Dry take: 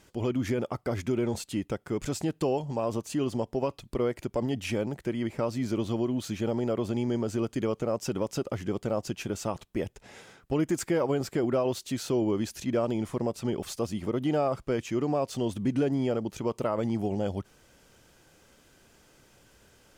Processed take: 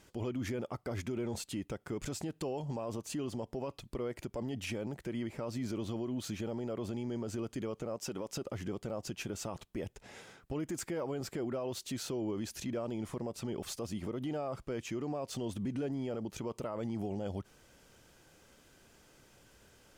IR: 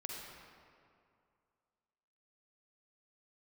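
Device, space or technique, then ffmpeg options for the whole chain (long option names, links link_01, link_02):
stacked limiters: -filter_complex "[0:a]asettb=1/sr,asplit=3[link_01][link_02][link_03];[link_01]atrim=end=7.964[link_04];[link_02]atrim=start=7.96:end=8.37,asetpts=PTS-STARTPTS,afade=type=in:duration=0.004:curve=qsin,afade=type=out:start_time=0.406:duration=0.004:curve=qsin,equalizer=frequency=66:width=0.44:gain=-8[link_05];[link_03]atrim=start=8.366[link_06];[link_04][link_05]acrossfade=duration=0.004:curve1=hsin:curve2=qsin[link_07];[link_07][link_06]acrossfade=duration=0.004:curve1=qsin:curve2=hsin,alimiter=limit=-23dB:level=0:latency=1:release=23,alimiter=level_in=3dB:limit=-24dB:level=0:latency=1:release=93,volume=-3dB,volume=-2.5dB"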